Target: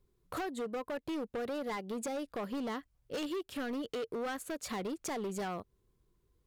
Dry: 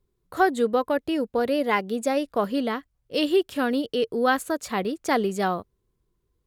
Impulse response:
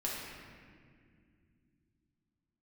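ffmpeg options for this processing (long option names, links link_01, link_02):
-af "acompressor=threshold=-32dB:ratio=5,asoftclip=type=hard:threshold=-33.5dB"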